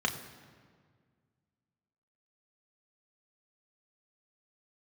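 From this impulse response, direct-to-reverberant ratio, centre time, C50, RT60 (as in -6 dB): 2.0 dB, 21 ms, 10.5 dB, 1.8 s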